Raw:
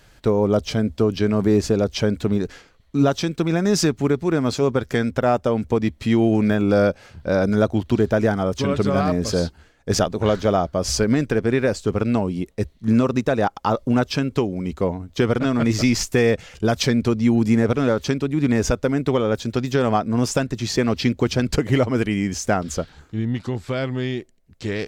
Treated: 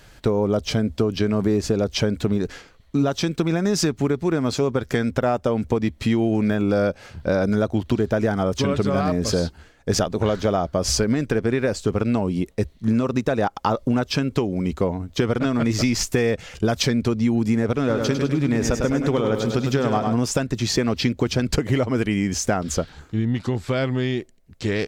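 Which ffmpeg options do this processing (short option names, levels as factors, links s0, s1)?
-filter_complex "[0:a]asplit=3[s0][s1][s2];[s0]afade=t=out:st=17.88:d=0.02[s3];[s1]aecho=1:1:102|204|306|408|510|612:0.473|0.246|0.128|0.0665|0.0346|0.018,afade=t=in:st=17.88:d=0.02,afade=t=out:st=20.13:d=0.02[s4];[s2]afade=t=in:st=20.13:d=0.02[s5];[s3][s4][s5]amix=inputs=3:normalize=0,acompressor=threshold=0.0891:ratio=4,volume=1.5"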